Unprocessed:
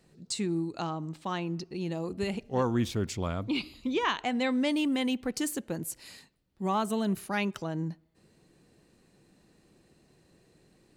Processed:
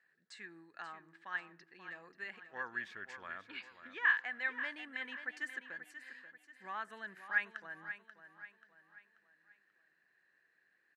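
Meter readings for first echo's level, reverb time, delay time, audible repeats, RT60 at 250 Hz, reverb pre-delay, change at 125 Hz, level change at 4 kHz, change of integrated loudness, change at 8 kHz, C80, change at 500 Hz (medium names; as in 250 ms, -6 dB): -11.0 dB, no reverb, 535 ms, 4, no reverb, no reverb, under -30 dB, -15.0 dB, -8.5 dB, under -25 dB, no reverb, -22.0 dB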